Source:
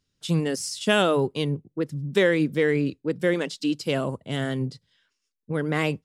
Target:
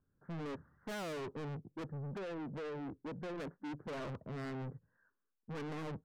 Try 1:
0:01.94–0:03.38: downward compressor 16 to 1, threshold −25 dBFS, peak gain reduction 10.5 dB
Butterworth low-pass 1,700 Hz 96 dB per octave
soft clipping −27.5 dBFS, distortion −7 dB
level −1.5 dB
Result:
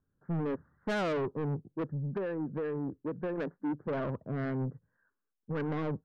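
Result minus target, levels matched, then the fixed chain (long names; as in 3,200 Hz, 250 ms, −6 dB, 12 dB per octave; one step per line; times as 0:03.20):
soft clipping: distortion −5 dB
0:01.94–0:03.38: downward compressor 16 to 1, threshold −25 dBFS, peak gain reduction 10.5 dB
Butterworth low-pass 1,700 Hz 96 dB per octave
soft clipping −39 dBFS, distortion −2 dB
level −1.5 dB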